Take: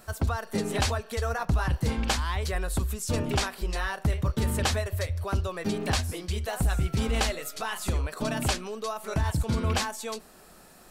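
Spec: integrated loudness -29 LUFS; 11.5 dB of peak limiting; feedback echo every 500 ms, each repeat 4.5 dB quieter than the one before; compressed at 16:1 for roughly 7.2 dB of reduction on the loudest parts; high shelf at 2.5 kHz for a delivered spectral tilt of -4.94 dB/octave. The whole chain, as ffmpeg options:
-af "highshelf=f=2500:g=-4.5,acompressor=threshold=0.0398:ratio=16,alimiter=level_in=2.24:limit=0.0631:level=0:latency=1,volume=0.447,aecho=1:1:500|1000|1500|2000|2500|3000|3500|4000|4500:0.596|0.357|0.214|0.129|0.0772|0.0463|0.0278|0.0167|0.01,volume=2.82"

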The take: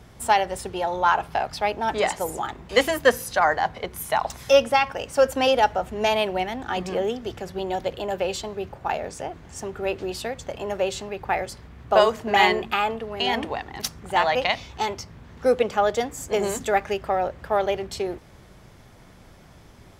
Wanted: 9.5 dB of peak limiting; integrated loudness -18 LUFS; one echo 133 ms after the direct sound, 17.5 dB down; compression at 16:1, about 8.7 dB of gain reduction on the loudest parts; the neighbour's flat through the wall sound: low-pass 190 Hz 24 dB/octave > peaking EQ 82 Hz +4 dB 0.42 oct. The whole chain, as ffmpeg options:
-af "acompressor=threshold=0.1:ratio=16,alimiter=limit=0.126:level=0:latency=1,lowpass=f=190:w=0.5412,lowpass=f=190:w=1.3066,equalizer=f=82:t=o:w=0.42:g=4,aecho=1:1:133:0.133,volume=23.7"

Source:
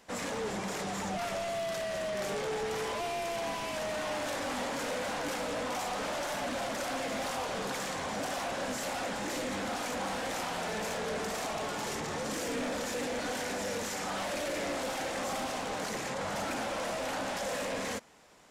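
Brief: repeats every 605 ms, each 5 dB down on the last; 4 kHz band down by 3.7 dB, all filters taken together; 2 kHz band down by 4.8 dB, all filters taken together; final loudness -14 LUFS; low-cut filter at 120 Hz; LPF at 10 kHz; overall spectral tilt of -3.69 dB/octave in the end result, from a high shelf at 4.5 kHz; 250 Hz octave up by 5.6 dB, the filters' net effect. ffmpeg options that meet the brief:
-af "highpass=120,lowpass=10000,equalizer=f=250:t=o:g=7,equalizer=f=2000:t=o:g=-6,equalizer=f=4000:t=o:g=-7,highshelf=f=4500:g=7,aecho=1:1:605|1210|1815|2420|3025|3630|4235:0.562|0.315|0.176|0.0988|0.0553|0.031|0.0173,volume=8.41"

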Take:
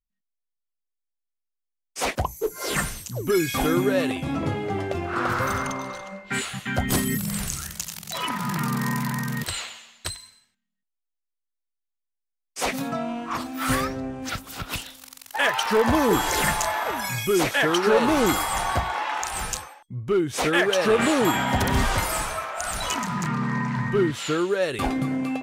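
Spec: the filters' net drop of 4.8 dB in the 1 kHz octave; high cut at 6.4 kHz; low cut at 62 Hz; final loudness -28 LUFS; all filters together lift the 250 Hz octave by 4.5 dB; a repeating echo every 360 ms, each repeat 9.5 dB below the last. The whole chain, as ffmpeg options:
-af "highpass=62,lowpass=6400,equalizer=f=250:t=o:g=6,equalizer=f=1000:t=o:g=-6.5,aecho=1:1:360|720|1080|1440:0.335|0.111|0.0365|0.012,volume=0.562"

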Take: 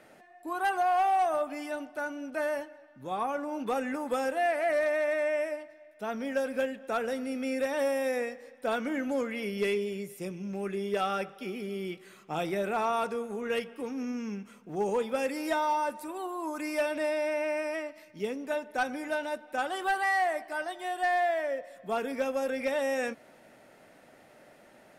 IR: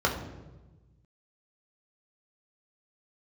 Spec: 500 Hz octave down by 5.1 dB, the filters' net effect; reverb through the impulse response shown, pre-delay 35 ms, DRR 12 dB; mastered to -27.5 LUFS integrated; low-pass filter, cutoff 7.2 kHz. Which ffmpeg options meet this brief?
-filter_complex "[0:a]lowpass=7200,equalizer=f=500:t=o:g=-6.5,asplit=2[s0][s1];[1:a]atrim=start_sample=2205,adelay=35[s2];[s1][s2]afir=irnorm=-1:irlink=0,volume=0.0562[s3];[s0][s3]amix=inputs=2:normalize=0,volume=2.11"

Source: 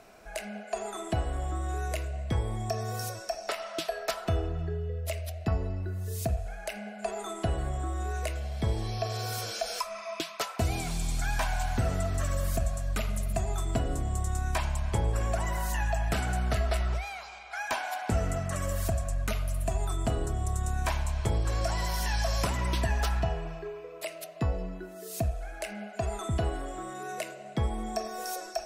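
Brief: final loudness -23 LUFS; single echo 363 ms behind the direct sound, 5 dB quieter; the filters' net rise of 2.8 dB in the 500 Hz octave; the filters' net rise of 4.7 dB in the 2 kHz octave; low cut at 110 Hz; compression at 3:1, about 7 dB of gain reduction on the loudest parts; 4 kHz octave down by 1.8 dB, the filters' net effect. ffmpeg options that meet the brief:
-af "highpass=110,equalizer=f=500:t=o:g=3.5,equalizer=f=2000:t=o:g=7,equalizer=f=4000:t=o:g=-5,acompressor=threshold=0.02:ratio=3,aecho=1:1:363:0.562,volume=4.73"

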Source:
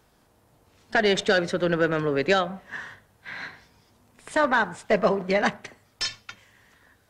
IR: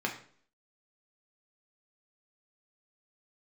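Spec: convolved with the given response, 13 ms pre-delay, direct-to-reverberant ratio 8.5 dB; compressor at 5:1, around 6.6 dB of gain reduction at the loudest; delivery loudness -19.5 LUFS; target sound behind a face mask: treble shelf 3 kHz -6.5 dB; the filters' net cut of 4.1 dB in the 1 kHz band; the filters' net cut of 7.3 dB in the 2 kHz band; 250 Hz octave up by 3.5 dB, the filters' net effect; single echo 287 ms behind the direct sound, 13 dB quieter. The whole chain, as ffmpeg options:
-filter_complex "[0:a]equalizer=f=250:t=o:g=5.5,equalizer=f=1000:t=o:g=-3.5,equalizer=f=2000:t=o:g=-6.5,acompressor=threshold=0.0708:ratio=5,aecho=1:1:287:0.224,asplit=2[s0][s1];[1:a]atrim=start_sample=2205,adelay=13[s2];[s1][s2]afir=irnorm=-1:irlink=0,volume=0.178[s3];[s0][s3]amix=inputs=2:normalize=0,highshelf=f=3000:g=-6.5,volume=2.99"

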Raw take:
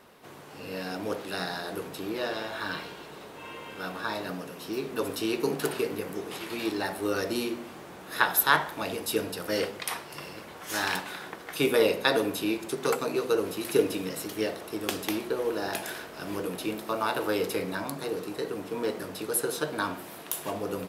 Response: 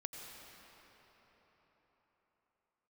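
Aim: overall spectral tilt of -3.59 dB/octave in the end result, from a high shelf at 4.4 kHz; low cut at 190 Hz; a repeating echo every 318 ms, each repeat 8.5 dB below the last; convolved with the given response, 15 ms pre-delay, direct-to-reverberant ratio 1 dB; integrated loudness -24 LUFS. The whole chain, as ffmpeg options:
-filter_complex "[0:a]highpass=190,highshelf=f=4400:g=-3.5,aecho=1:1:318|636|954|1272:0.376|0.143|0.0543|0.0206,asplit=2[s0][s1];[1:a]atrim=start_sample=2205,adelay=15[s2];[s1][s2]afir=irnorm=-1:irlink=0,volume=1.12[s3];[s0][s3]amix=inputs=2:normalize=0,volume=1.5"

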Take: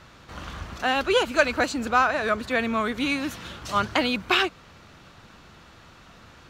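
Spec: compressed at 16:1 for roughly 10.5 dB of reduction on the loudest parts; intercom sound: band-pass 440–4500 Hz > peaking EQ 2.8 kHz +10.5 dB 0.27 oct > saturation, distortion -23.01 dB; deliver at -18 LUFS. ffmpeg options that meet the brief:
-af "acompressor=threshold=0.0631:ratio=16,highpass=440,lowpass=4500,equalizer=f=2800:t=o:w=0.27:g=10.5,asoftclip=threshold=0.168,volume=3.76"

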